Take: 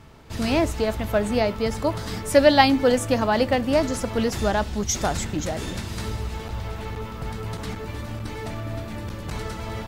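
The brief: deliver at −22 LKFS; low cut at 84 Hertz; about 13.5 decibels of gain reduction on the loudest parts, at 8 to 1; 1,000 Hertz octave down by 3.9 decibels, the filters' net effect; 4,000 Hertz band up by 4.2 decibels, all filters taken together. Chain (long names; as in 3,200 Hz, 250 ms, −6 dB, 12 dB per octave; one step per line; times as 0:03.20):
high-pass filter 84 Hz
parametric band 1,000 Hz −5.5 dB
parametric band 4,000 Hz +5.5 dB
downward compressor 8 to 1, threshold −25 dBFS
level +9 dB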